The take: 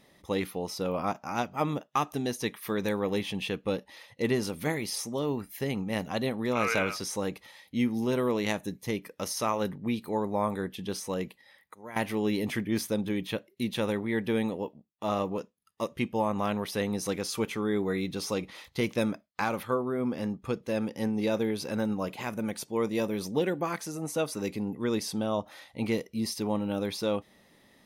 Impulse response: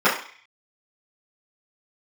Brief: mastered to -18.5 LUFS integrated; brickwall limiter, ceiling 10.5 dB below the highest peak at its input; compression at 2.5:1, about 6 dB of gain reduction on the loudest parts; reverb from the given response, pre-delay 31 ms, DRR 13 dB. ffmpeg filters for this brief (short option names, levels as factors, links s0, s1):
-filter_complex "[0:a]acompressor=threshold=0.0251:ratio=2.5,alimiter=level_in=1.41:limit=0.0631:level=0:latency=1,volume=0.708,asplit=2[s0][s1];[1:a]atrim=start_sample=2205,adelay=31[s2];[s1][s2]afir=irnorm=-1:irlink=0,volume=0.0188[s3];[s0][s3]amix=inputs=2:normalize=0,volume=8.41"